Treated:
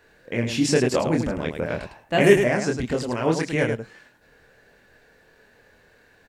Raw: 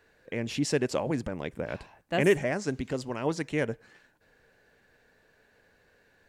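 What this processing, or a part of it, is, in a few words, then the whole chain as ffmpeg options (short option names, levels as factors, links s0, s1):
slapback doubling: -filter_complex "[0:a]asplit=3[s0][s1][s2];[s1]adelay=25,volume=0.708[s3];[s2]adelay=105,volume=0.447[s4];[s0][s3][s4]amix=inputs=3:normalize=0,volume=1.88"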